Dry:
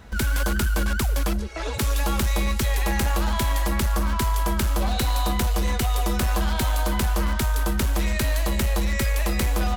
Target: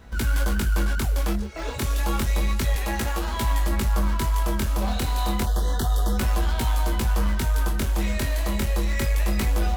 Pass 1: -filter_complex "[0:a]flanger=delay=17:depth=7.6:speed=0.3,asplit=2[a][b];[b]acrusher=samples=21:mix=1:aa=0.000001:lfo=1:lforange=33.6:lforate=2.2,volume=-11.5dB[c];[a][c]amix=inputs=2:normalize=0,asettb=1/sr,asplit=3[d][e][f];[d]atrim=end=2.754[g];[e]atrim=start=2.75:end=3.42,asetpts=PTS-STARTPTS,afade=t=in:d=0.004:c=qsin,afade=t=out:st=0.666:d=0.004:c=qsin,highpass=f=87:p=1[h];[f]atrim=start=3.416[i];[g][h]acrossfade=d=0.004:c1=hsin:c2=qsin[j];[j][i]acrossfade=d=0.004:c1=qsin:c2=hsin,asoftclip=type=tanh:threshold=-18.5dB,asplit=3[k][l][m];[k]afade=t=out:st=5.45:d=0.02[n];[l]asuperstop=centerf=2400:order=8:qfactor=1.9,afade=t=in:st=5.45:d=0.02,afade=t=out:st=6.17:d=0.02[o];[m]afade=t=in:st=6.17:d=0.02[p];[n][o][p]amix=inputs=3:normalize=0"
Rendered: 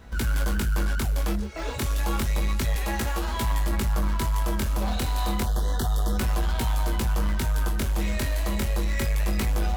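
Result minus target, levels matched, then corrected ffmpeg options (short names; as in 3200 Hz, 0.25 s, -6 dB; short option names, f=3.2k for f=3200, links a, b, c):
soft clip: distortion +15 dB
-filter_complex "[0:a]flanger=delay=17:depth=7.6:speed=0.3,asplit=2[a][b];[b]acrusher=samples=21:mix=1:aa=0.000001:lfo=1:lforange=33.6:lforate=2.2,volume=-11.5dB[c];[a][c]amix=inputs=2:normalize=0,asettb=1/sr,asplit=3[d][e][f];[d]atrim=end=2.754[g];[e]atrim=start=2.75:end=3.42,asetpts=PTS-STARTPTS,afade=t=in:d=0.004:c=qsin,afade=t=out:st=0.666:d=0.004:c=qsin,highpass=f=87:p=1[h];[f]atrim=start=3.416[i];[g][h]acrossfade=d=0.004:c1=hsin:c2=qsin[j];[j][i]acrossfade=d=0.004:c1=qsin:c2=hsin,asoftclip=type=tanh:threshold=-9.5dB,asplit=3[k][l][m];[k]afade=t=out:st=5.45:d=0.02[n];[l]asuperstop=centerf=2400:order=8:qfactor=1.9,afade=t=in:st=5.45:d=0.02,afade=t=out:st=6.17:d=0.02[o];[m]afade=t=in:st=6.17:d=0.02[p];[n][o][p]amix=inputs=3:normalize=0"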